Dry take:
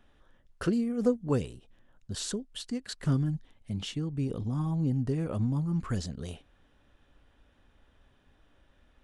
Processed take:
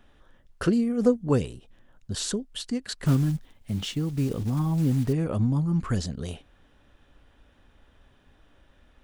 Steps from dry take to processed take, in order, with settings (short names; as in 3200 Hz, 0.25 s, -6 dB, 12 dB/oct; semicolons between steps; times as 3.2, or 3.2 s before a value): 3.06–5.14 block floating point 5-bit; gain +5 dB